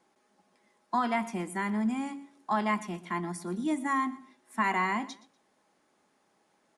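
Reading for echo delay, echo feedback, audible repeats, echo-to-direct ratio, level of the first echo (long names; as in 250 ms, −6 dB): 121 ms, 27%, 2, −18.0 dB, −18.5 dB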